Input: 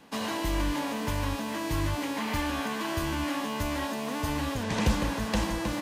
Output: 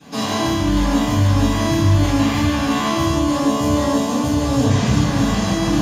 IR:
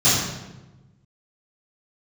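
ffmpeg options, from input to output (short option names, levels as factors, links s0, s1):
-filter_complex "[0:a]asettb=1/sr,asplit=3[s0][s1][s2];[s0]atrim=end=3.044[s3];[s1]atrim=start=3.04:end=4.7,asetpts=PTS-STARTPTS,afade=t=in:d=0.004:c=qsin,afade=t=out:st=1.656:d=0.004:c=qsin,equalizer=f=500:t=o:w=1:g=7,equalizer=f=2000:t=o:w=1:g=-4,equalizer=f=8000:t=o:w=1:g=4[s4];[s2]atrim=start=4.696[s5];[s3][s4]acrossfade=d=0.004:c1=hsin:c2=qsin[s6];[s6][s5]acrossfade=d=0.004:c1=qsin:c2=hsin,alimiter=level_in=1.26:limit=0.0631:level=0:latency=1,volume=0.794[s7];[1:a]atrim=start_sample=2205[s8];[s7][s8]afir=irnorm=-1:irlink=0,volume=0.473"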